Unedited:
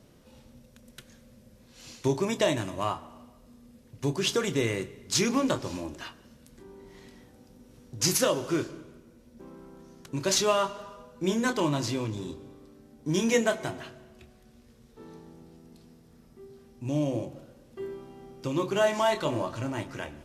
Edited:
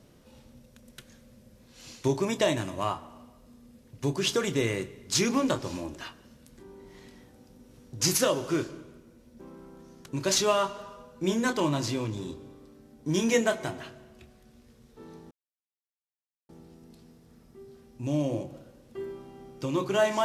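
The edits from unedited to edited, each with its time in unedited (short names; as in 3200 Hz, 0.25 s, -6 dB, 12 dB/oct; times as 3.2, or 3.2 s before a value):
15.31 insert silence 1.18 s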